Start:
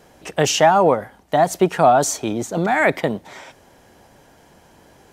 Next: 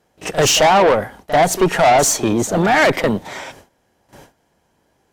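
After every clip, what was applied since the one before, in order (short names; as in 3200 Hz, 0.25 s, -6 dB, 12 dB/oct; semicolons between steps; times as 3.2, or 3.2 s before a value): gate with hold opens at -39 dBFS; tube stage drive 18 dB, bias 0.3; pre-echo 40 ms -13.5 dB; gain +9 dB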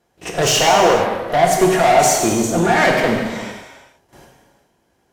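non-linear reverb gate 0.49 s falling, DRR -0.5 dB; gain -3.5 dB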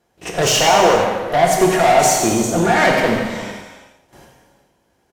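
feedback echo 85 ms, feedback 51%, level -12 dB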